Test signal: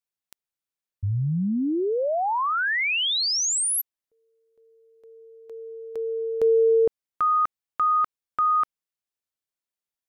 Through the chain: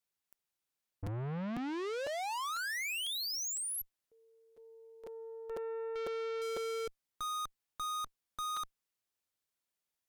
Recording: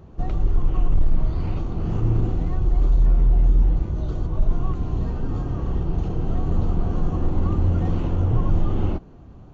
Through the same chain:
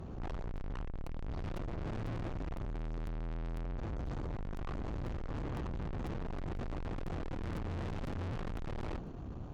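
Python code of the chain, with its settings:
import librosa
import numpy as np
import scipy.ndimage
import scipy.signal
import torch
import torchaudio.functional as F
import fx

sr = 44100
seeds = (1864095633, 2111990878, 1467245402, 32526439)

y = fx.tube_stage(x, sr, drive_db=41.0, bias=0.5)
y = fx.buffer_crackle(y, sr, first_s=0.56, period_s=0.5, block=256, kind='repeat')
y = F.gain(torch.from_numpy(y), 4.0).numpy()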